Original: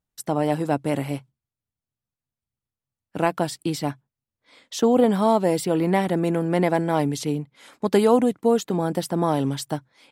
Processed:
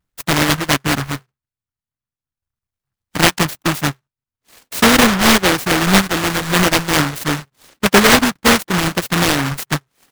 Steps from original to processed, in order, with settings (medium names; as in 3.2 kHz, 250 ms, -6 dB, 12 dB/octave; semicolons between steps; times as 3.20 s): square wave that keeps the level; reverb removal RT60 1.4 s; delay time shaken by noise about 1.2 kHz, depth 0.4 ms; trim +4.5 dB